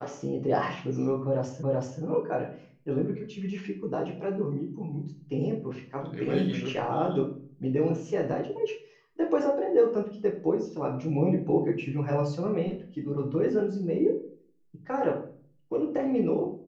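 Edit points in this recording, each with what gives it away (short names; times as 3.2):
1.63 repeat of the last 0.38 s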